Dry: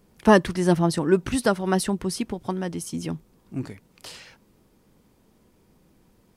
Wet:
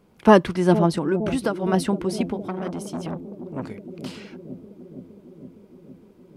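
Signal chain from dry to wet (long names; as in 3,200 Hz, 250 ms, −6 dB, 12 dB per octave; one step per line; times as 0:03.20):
bass and treble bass 0 dB, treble −9 dB
0:00.95–0:01.74: downward compressor 6 to 1, threshold −22 dBFS, peak gain reduction 9.5 dB
low-shelf EQ 74 Hz −10.5 dB
notch filter 1,800 Hz, Q 9.7
bucket-brigade delay 463 ms, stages 2,048, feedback 75%, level −11.5 dB
0:02.47–0:03.63: saturating transformer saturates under 1,100 Hz
level +3 dB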